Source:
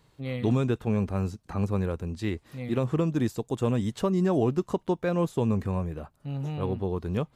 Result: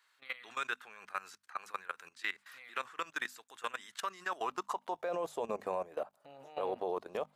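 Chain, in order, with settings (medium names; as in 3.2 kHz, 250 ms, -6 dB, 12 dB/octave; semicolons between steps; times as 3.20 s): high-pass sweep 1.5 kHz -> 620 Hz, 4.19–5.10 s; level held to a coarse grid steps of 19 dB; hum notches 50/100/150/200/250 Hz; trim +3.5 dB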